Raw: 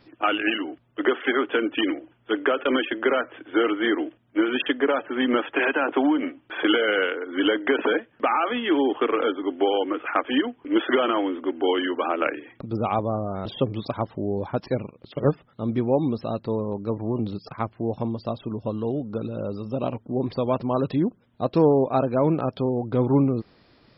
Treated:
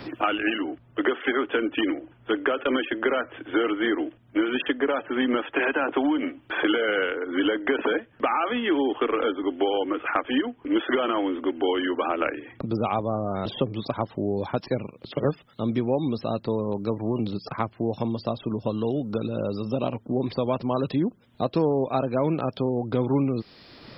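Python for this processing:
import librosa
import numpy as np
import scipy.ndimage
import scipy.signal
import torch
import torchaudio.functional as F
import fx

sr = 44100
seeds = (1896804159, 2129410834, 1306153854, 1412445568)

y = fx.band_squash(x, sr, depth_pct=70)
y = F.gain(torch.from_numpy(y), -2.0).numpy()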